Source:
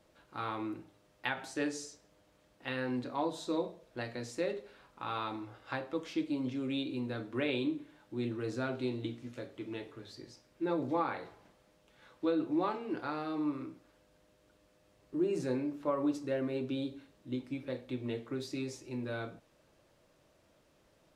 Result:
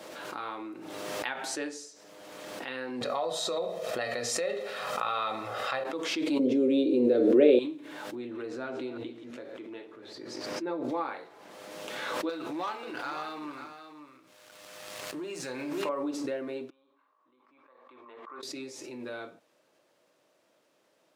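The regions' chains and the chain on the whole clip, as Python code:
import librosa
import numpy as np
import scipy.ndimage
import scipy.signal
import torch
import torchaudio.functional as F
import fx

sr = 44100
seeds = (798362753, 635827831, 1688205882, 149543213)

y = fx.chain(x, sr, fx.peak_eq(hz=300.0, db=-9.0, octaves=0.27),
    fx.comb(ms=1.6, depth=0.57),
    fx.env_flatten(amount_pct=70), at=(3.01, 5.84))
y = fx.chain(y, sr, fx.highpass(hz=170.0, slope=12),
    fx.low_shelf_res(hz=700.0, db=12.0, q=3.0), at=(6.39, 7.59))
y = fx.chain(y, sr, fx.reverse_delay(ms=165, wet_db=-11.5),
    fx.high_shelf(hz=3700.0, db=-10.0), at=(8.15, 10.84))
y = fx.chain(y, sr, fx.peak_eq(hz=330.0, db=-13.5, octaves=2.1),
    fx.leveller(passes=2),
    fx.echo_single(ms=539, db=-9.5), at=(12.29, 15.89))
y = fx.chain(y, sr, fx.bandpass_q(hz=1100.0, q=12.0),
    fx.sustainer(db_per_s=23.0), at=(16.7, 18.43))
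y = scipy.signal.sosfilt(scipy.signal.butter(2, 300.0, 'highpass', fs=sr, output='sos'), y)
y = fx.pre_swell(y, sr, db_per_s=26.0)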